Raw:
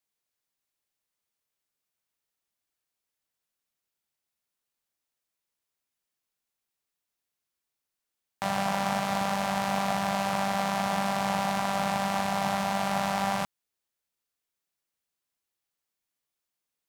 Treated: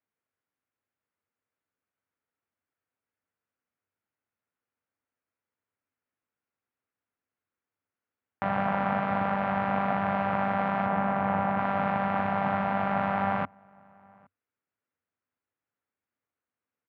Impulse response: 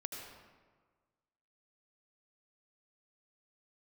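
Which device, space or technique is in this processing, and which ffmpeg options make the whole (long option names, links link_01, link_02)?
bass cabinet: -filter_complex "[0:a]asettb=1/sr,asplit=3[link_01][link_02][link_03];[link_01]atrim=end=10.864[link_04];[link_02]atrim=start=10.86:end=11.59,asetpts=PTS-STARTPTS,afade=type=in:duration=0.004:curve=qsin,afade=type=out:start_time=0.726:duration=0.004:curve=qsin,aemphasis=mode=reproduction:type=75fm[link_05];[link_03]atrim=start=11.586[link_06];[link_04][link_05]acrossfade=duration=0.004:curve1=hsin:curve2=qsin[link_07];[link_07][link_06]acrossfade=duration=0.004:curve1=qsin:curve2=hsin,highpass=71,equalizer=frequency=95:width_type=q:width=4:gain=10,equalizer=frequency=260:width_type=q:width=4:gain=7,equalizer=frequency=480:width_type=q:width=4:gain=4,equalizer=frequency=1400:width_type=q:width=4:gain=4,lowpass=frequency=2300:width=0.5412,lowpass=frequency=2300:width=1.3066,asplit=2[link_08][link_09];[link_09]adelay=816.3,volume=-28dB,highshelf=frequency=4000:gain=-18.4[link_10];[link_08][link_10]amix=inputs=2:normalize=0"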